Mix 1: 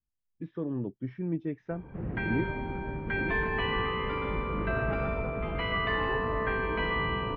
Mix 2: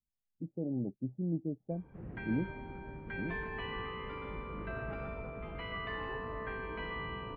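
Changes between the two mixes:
speech: add rippled Chebyshev low-pass 820 Hz, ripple 6 dB; background -10.5 dB

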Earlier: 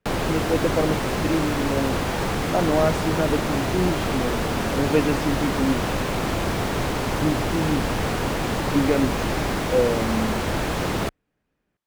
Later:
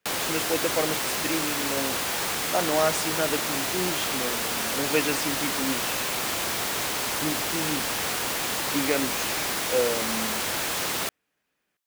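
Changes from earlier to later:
background -4.0 dB; master: add tilt EQ +4 dB/octave

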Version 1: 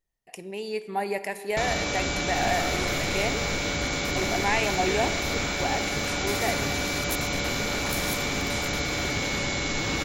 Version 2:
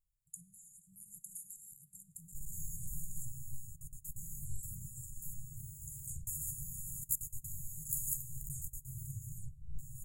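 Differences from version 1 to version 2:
first sound: muted; master: add brick-wall FIR band-stop 160–6600 Hz

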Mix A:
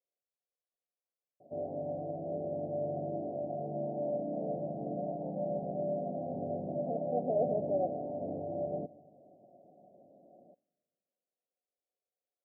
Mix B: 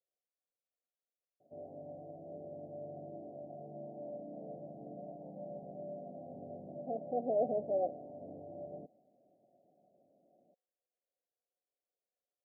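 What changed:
background -7.0 dB; reverb: off

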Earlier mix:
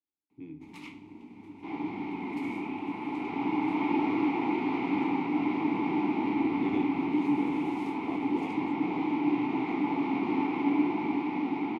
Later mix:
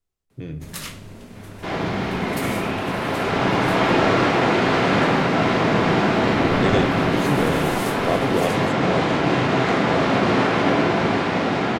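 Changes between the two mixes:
first sound -4.5 dB; master: remove vowel filter u

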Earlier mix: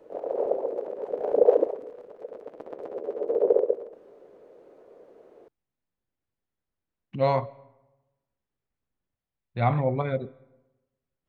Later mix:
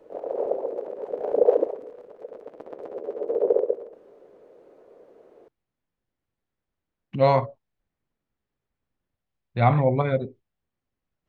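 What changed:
speech +5.0 dB; reverb: off

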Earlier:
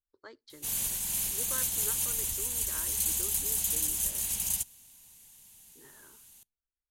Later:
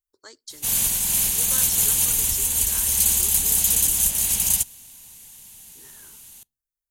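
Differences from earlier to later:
speech: remove distance through air 400 m; background +10.5 dB

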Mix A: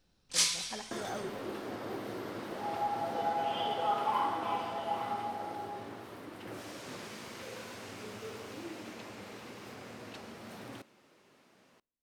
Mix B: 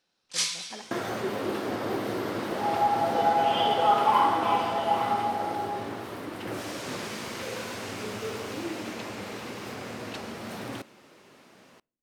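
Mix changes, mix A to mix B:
first sound: add frequency weighting A; second sound +9.5 dB

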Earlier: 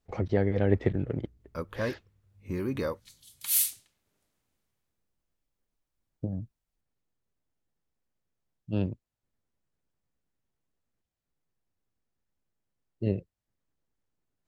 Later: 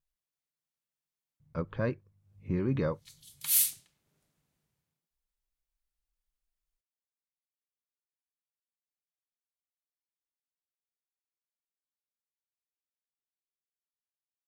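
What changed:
speech: muted; first sound: add distance through air 210 m; master: add peaking EQ 150 Hz +11 dB 0.44 oct

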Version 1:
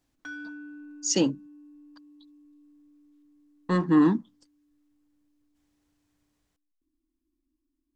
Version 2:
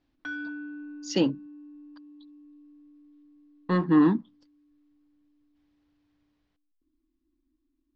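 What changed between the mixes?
background +4.0 dB; master: add low-pass 4.5 kHz 24 dB/octave

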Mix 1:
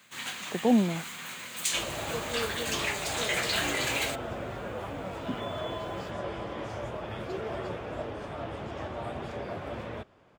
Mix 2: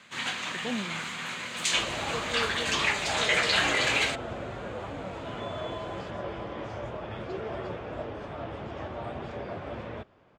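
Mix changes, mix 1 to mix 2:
speech -11.0 dB; first sound +6.5 dB; master: add distance through air 81 m

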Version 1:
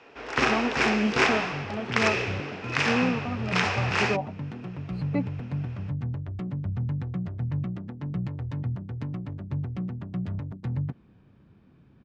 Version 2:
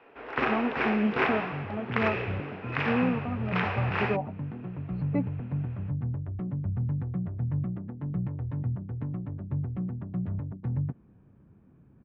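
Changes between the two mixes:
first sound: add bass shelf 200 Hz -8.5 dB; second sound: add treble shelf 2.8 kHz -9.5 dB; master: add distance through air 490 m

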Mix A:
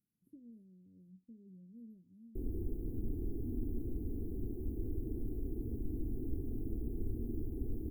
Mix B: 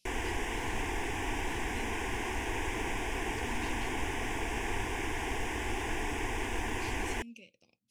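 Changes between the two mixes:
background: entry -2.30 s; master: remove inverse Chebyshev band-stop 1.2–5.7 kHz, stop band 70 dB

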